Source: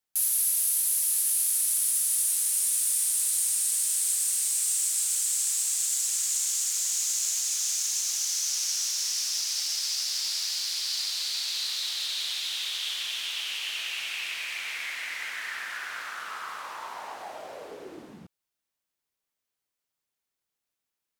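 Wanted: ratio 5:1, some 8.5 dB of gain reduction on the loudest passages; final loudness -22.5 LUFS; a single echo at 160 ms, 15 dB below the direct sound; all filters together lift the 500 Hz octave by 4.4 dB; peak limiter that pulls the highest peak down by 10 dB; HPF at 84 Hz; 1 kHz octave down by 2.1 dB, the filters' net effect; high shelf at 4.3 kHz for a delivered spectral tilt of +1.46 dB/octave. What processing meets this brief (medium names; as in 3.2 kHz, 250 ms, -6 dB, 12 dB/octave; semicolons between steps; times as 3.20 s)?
high-pass 84 Hz; peaking EQ 500 Hz +7 dB; peaking EQ 1 kHz -5 dB; treble shelf 4.3 kHz +4.5 dB; compression 5:1, threshold -28 dBFS; peak limiter -23 dBFS; delay 160 ms -15 dB; trim +8 dB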